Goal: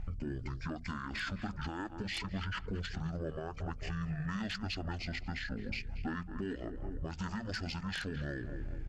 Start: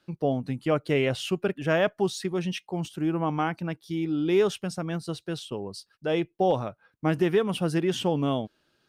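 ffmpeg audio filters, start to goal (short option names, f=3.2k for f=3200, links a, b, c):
-filter_complex "[0:a]asplit=2[a][b];[b]adelay=215,lowpass=f=4.9k:p=1,volume=-17dB,asplit=2[c][d];[d]adelay=215,lowpass=f=4.9k:p=1,volume=0.43,asplit=2[e][f];[f]adelay=215,lowpass=f=4.9k:p=1,volume=0.43,asplit=2[g][h];[h]adelay=215,lowpass=f=4.9k:p=1,volume=0.43[i];[a][c][e][g][i]amix=inputs=5:normalize=0,aeval=exprs='val(0)+0.0141*(sin(2*PI*60*n/s)+sin(2*PI*2*60*n/s)/2+sin(2*PI*3*60*n/s)/3+sin(2*PI*4*60*n/s)/4+sin(2*PI*5*60*n/s)/5)':c=same,acrossover=split=4000[j][k];[j]acompressor=threshold=-33dB:ratio=12[l];[k]aeval=exprs='(mod(29.9*val(0)+1,2)-1)/29.9':c=same[m];[l][m]amix=inputs=2:normalize=0,bandreject=f=50:t=h:w=6,bandreject=f=100:t=h:w=6,bandreject=f=150:t=h:w=6,bandreject=f=200:t=h:w=6,bandreject=f=250:t=h:w=6,bandreject=f=300:t=h:w=6,bandreject=f=350:t=h:w=6,bandreject=f=400:t=h:w=6,bandreject=f=450:t=h:w=6,bandreject=f=500:t=h:w=6,asetrate=22696,aresample=44100,atempo=1.94306,lowshelf=f=110:g=6.5,asplit=2[n][o];[o]asoftclip=type=tanh:threshold=-39dB,volume=-11dB[p];[n][p]amix=inputs=2:normalize=0,lowshelf=f=270:g=-11.5,alimiter=level_in=11dB:limit=-24dB:level=0:latency=1:release=157,volume=-11dB,volume=6dB"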